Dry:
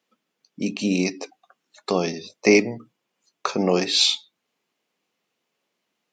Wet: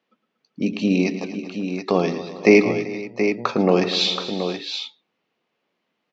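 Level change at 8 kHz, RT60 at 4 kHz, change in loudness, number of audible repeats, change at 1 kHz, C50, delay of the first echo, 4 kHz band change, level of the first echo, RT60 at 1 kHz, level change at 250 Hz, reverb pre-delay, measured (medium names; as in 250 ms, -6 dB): -8.5 dB, no reverb, +1.0 dB, 5, +3.5 dB, no reverb, 111 ms, -1.5 dB, -13.0 dB, no reverb, +4.0 dB, no reverb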